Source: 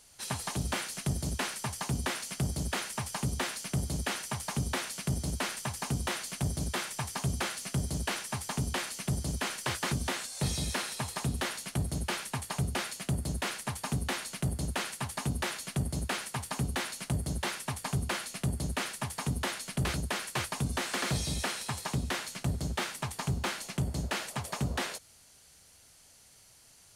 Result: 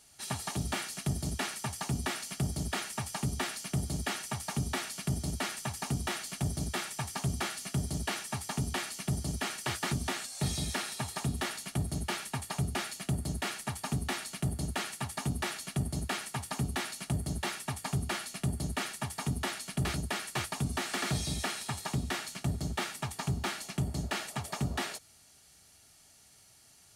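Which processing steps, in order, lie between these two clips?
comb of notches 510 Hz

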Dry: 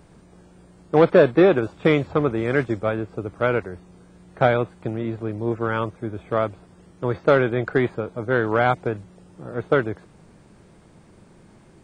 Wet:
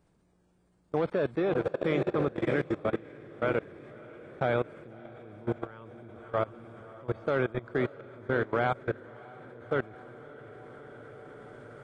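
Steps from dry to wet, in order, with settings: echo that smears into a reverb 619 ms, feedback 64%, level -7 dB; level held to a coarse grid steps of 21 dB; trim -5.5 dB

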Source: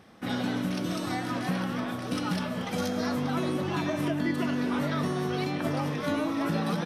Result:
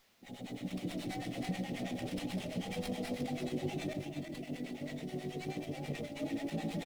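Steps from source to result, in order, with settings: fade-in on the opening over 1.78 s; low-pass 8.8 kHz; treble shelf 4.1 kHz +5.5 dB; hum notches 50/100/150/200/250/300 Hz; 3.93–6.17 s: compressor with a negative ratio -36 dBFS, ratio -0.5; peak limiter -28.5 dBFS, peak gain reduction 11 dB; harmonic tremolo 9.3 Hz, depth 100%, crossover 680 Hz; word length cut 12-bit, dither triangular; brick-wall FIR band-stop 860–1800 Hz; delay 348 ms -8 dB; sliding maximum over 5 samples; trim +3 dB

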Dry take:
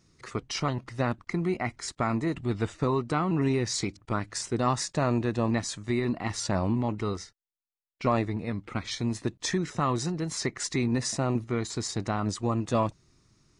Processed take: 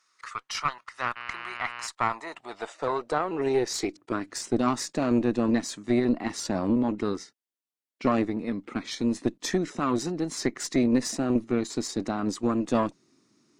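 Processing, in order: 1.15–1.86 s: mains buzz 120 Hz, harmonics 25, -41 dBFS 0 dB/octave; high-pass sweep 1.2 kHz -> 260 Hz, 1.60–4.42 s; Chebyshev shaper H 4 -17 dB, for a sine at -8.5 dBFS; trim -1 dB

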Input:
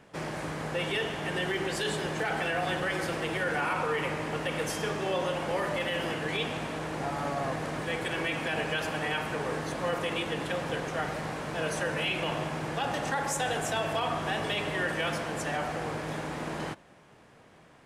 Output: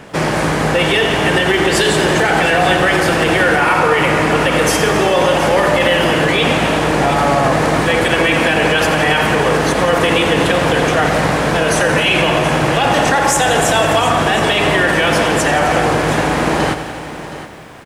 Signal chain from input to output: on a send: delay 719 ms -14 dB; on the sum: loudness maximiser +23 dB; bit-crushed delay 87 ms, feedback 80%, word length 7-bit, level -12.5 dB; trim -3.5 dB

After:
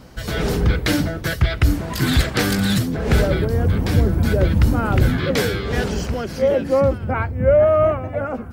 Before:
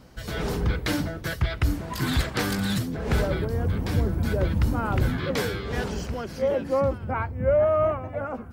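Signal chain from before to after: dynamic bell 990 Hz, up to -6 dB, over -43 dBFS, Q 2.5; trim +7.5 dB

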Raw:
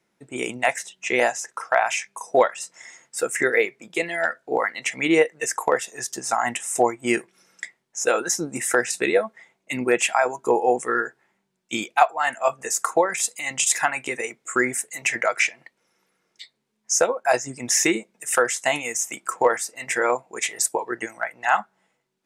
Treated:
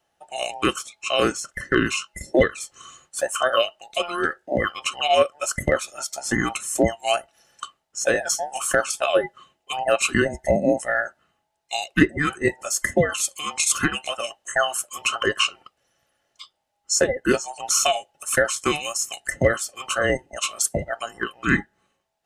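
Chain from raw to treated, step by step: every band turned upside down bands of 1 kHz

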